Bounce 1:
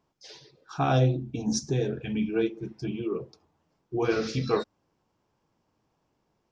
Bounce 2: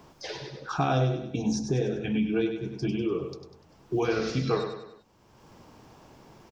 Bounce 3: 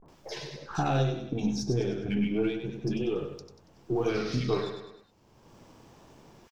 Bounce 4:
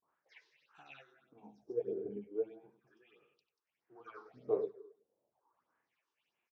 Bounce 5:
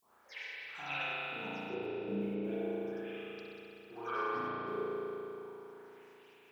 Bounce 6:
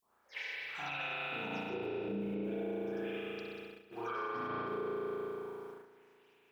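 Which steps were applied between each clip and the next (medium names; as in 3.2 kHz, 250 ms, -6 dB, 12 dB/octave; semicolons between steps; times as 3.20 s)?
on a send: feedback delay 98 ms, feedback 36%, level -8 dB; on the sum: three bands compressed up and down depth 70%
partial rectifier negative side -3 dB; vibrato 0.38 Hz 92 cents; bands offset in time lows, highs 60 ms, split 1.2 kHz
phase shifter stages 6, 1.6 Hz, lowest notch 160–5000 Hz; wah-wah 0.36 Hz 420–2700 Hz, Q 4.4; upward expansion 1.5:1, over -55 dBFS; trim +3 dB
treble shelf 2.9 kHz +10 dB; compressor with a negative ratio -47 dBFS, ratio -1; spring tank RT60 3.4 s, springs 35 ms, chirp 30 ms, DRR -10 dB; trim +1 dB
bass shelf 62 Hz +7.5 dB; gate -51 dBFS, range -10 dB; peak limiter -34 dBFS, peak gain reduction 8 dB; trim +3.5 dB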